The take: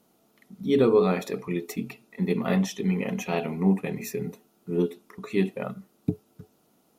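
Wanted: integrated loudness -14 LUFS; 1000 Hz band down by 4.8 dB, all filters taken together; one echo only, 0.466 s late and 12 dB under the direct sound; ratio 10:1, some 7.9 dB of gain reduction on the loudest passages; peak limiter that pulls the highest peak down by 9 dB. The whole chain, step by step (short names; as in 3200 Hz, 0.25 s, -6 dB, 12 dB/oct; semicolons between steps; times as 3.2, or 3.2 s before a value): bell 1000 Hz -7 dB; compressor 10:1, threshold -24 dBFS; limiter -23 dBFS; echo 0.466 s -12 dB; gain +20 dB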